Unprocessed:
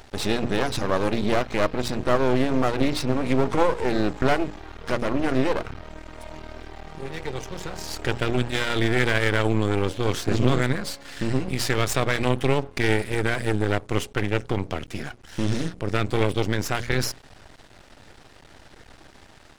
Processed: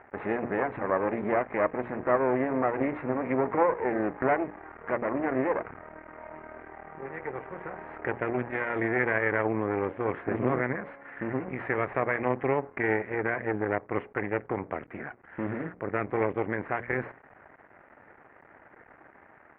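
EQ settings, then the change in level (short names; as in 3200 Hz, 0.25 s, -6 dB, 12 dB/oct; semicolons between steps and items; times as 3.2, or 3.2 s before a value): HPF 470 Hz 6 dB/oct; steep low-pass 2100 Hz 48 dB/oct; dynamic EQ 1400 Hz, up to -5 dB, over -42 dBFS, Q 3.4; 0.0 dB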